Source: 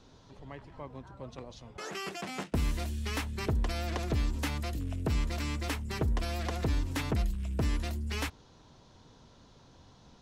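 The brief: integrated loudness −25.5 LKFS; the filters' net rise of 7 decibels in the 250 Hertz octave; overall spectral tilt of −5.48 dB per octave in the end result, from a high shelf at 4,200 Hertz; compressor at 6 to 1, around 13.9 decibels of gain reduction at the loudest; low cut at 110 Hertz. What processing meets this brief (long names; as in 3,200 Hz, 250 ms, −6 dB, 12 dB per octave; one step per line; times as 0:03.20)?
high-pass filter 110 Hz
parametric band 250 Hz +9 dB
high-shelf EQ 4,200 Hz −7.5 dB
downward compressor 6 to 1, threshold −38 dBFS
level +17 dB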